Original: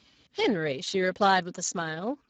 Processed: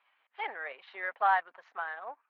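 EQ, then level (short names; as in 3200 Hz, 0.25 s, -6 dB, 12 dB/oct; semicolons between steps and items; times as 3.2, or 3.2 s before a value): Chebyshev high-pass 830 Hz, order 3; LPF 2300 Hz 24 dB/oct; air absorption 190 m; 0.0 dB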